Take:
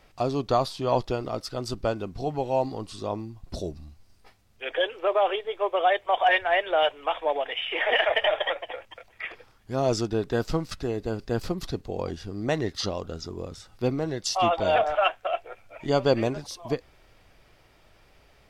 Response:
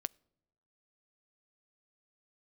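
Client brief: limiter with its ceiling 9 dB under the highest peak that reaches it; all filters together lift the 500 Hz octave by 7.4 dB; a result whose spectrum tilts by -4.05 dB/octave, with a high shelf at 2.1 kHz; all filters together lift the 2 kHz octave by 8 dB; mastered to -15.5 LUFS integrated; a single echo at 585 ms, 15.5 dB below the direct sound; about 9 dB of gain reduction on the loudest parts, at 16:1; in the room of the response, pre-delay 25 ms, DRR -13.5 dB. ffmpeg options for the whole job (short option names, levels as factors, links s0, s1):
-filter_complex "[0:a]equalizer=f=500:t=o:g=8.5,equalizer=f=2000:t=o:g=5.5,highshelf=f=2100:g=6.5,acompressor=threshold=0.126:ratio=16,alimiter=limit=0.141:level=0:latency=1,aecho=1:1:585:0.168,asplit=2[s0][s1];[1:a]atrim=start_sample=2205,adelay=25[s2];[s1][s2]afir=irnorm=-1:irlink=0,volume=5.31[s3];[s0][s3]amix=inputs=2:normalize=0,volume=0.891"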